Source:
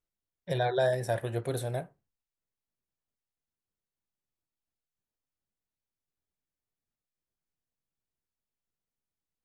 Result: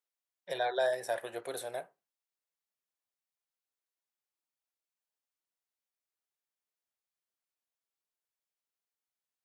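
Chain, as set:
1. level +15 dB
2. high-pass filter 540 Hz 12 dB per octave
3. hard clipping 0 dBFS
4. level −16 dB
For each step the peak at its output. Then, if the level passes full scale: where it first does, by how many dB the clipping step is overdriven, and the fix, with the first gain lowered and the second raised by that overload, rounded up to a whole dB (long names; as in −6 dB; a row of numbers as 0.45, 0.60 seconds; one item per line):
−0.5, −3.0, −3.0, −19.0 dBFS
no step passes full scale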